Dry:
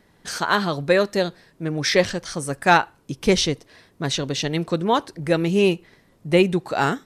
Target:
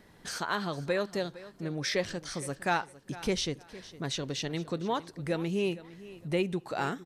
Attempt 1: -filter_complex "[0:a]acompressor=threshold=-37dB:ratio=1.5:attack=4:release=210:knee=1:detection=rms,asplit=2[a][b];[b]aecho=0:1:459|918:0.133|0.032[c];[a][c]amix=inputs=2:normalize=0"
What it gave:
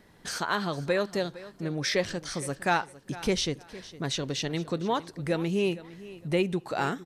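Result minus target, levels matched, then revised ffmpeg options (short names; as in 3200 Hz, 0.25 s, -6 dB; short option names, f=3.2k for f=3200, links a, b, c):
compressor: peak gain reduction -3 dB
-filter_complex "[0:a]acompressor=threshold=-46.5dB:ratio=1.5:attack=4:release=210:knee=1:detection=rms,asplit=2[a][b];[b]aecho=0:1:459|918:0.133|0.032[c];[a][c]amix=inputs=2:normalize=0"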